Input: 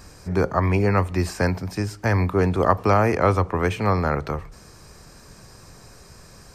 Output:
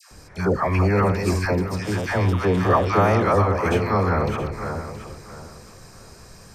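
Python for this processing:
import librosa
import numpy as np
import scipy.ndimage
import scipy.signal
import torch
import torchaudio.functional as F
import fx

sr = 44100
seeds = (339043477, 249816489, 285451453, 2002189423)

y = fx.reverse_delay_fb(x, sr, ms=336, feedback_pct=51, wet_db=-7.0)
y = fx.dispersion(y, sr, late='lows', ms=115.0, hz=930.0)
y = fx.dmg_buzz(y, sr, base_hz=120.0, harmonics=31, level_db=-41.0, tilt_db=-1, odd_only=False, at=(1.81, 3.22), fade=0.02)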